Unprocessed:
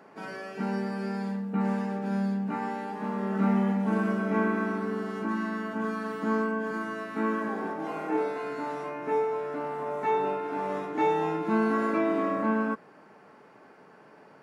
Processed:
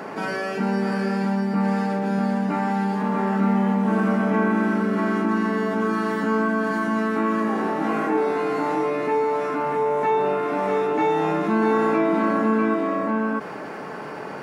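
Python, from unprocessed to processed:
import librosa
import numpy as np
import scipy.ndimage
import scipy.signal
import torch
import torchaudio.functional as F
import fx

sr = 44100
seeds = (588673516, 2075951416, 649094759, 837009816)

p1 = x + fx.echo_single(x, sr, ms=645, db=-4.5, dry=0)
p2 = fx.env_flatten(p1, sr, amount_pct=50)
y = p2 * librosa.db_to_amplitude(3.5)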